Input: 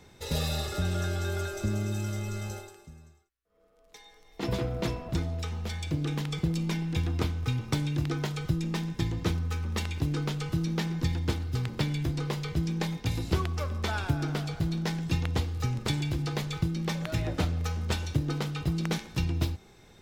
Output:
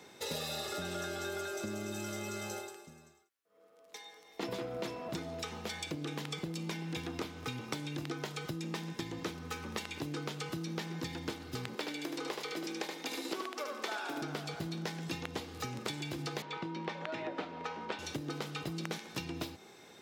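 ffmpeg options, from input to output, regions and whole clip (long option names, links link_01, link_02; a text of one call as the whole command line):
ffmpeg -i in.wav -filter_complex "[0:a]asettb=1/sr,asplit=3[link_01][link_02][link_03];[link_01]atrim=end=11.754[link_04];[link_02]atrim=start=11.75:end=14.22,asetpts=PTS-STARTPTS,afade=type=in:duration=0.004:curve=qsin,afade=type=out:start_time=2.466:duration=0.004:curve=qsin,highpass=frequency=260:width=0.5412,highpass=frequency=260:width=1.3066,aecho=1:1:75:0.631,atrim=end_sample=108927[link_05];[link_03]atrim=start=14.216[link_06];[link_04][link_05]acrossfade=duration=0.004:curve1=hsin:curve2=qsin[link_07];[link_07][link_06]acrossfade=duration=0.004:curve1=qsin:curve2=hsin,asettb=1/sr,asplit=3[link_08][link_09][link_10];[link_08]atrim=end=16.424[link_11];[link_09]atrim=start=16.42:end=17.99,asetpts=PTS-STARTPTS,afade=type=in:duration=0.004:curve=qsin,afade=type=out:start_time=1.566:duration=0.004:curve=qsin,highpass=230,lowpass=3000,aeval=exprs='val(0)+0.00501*sin(2*PI*950*n/s)':channel_layout=same[link_12];[link_10]atrim=start=17.986[link_13];[link_11][link_12]acrossfade=duration=0.004:curve1=hsin:curve2=qsin[link_14];[link_14][link_13]acrossfade=duration=0.004:curve1=qsin:curve2=hsin,highpass=260,acompressor=threshold=-38dB:ratio=6,volume=2.5dB" out.wav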